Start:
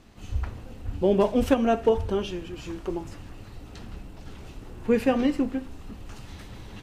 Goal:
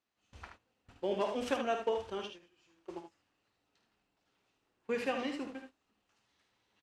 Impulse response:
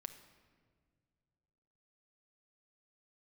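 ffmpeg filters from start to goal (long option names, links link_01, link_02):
-filter_complex "[0:a]lowpass=7700,agate=range=-21dB:threshold=-29dB:ratio=16:detection=peak,highpass=frequency=1000:poles=1,asplit=2[link_01][link_02];[link_02]aecho=0:1:52|76:0.316|0.447[link_03];[link_01][link_03]amix=inputs=2:normalize=0,volume=-5dB"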